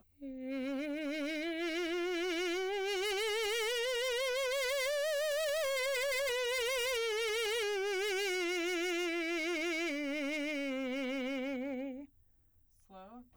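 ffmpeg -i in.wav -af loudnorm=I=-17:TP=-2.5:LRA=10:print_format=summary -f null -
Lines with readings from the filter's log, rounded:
Input Integrated:    -35.0 LUFS
Input True Peak:     -31.3 dBTP
Input LRA:             7.2 LU
Input Threshold:     -45.7 LUFS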